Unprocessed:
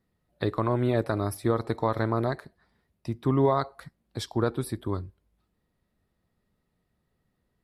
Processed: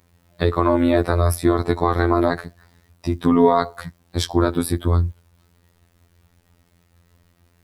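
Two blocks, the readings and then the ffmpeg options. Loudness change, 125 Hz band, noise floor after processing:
+8.5 dB, +7.0 dB, −61 dBFS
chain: -filter_complex "[0:a]equalizer=frequency=66:width=2:gain=13,asplit=2[link_01][link_02];[link_02]alimiter=limit=-21dB:level=0:latency=1:release=155,volume=3dB[link_03];[link_01][link_03]amix=inputs=2:normalize=0,acrusher=bits=10:mix=0:aa=0.000001,afftfilt=real='hypot(re,im)*cos(PI*b)':imag='0':win_size=2048:overlap=0.75,volume=7.5dB"

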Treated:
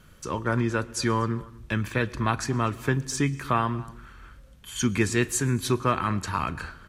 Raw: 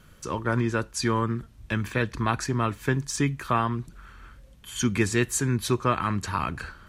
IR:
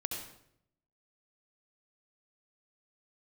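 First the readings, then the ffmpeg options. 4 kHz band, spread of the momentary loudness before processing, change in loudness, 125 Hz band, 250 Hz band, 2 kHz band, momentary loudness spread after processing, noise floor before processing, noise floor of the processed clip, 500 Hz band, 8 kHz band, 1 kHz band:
0.0 dB, 7 LU, 0.0 dB, 0.0 dB, 0.0 dB, 0.0 dB, 7 LU, −53 dBFS, −52 dBFS, 0.0 dB, 0.0 dB, 0.0 dB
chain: -filter_complex "[0:a]asplit=2[link_01][link_02];[link_02]adelay=239.1,volume=-21dB,highshelf=frequency=4000:gain=-5.38[link_03];[link_01][link_03]amix=inputs=2:normalize=0,asplit=2[link_04][link_05];[1:a]atrim=start_sample=2205,adelay=37[link_06];[link_05][link_06]afir=irnorm=-1:irlink=0,volume=-20dB[link_07];[link_04][link_07]amix=inputs=2:normalize=0"

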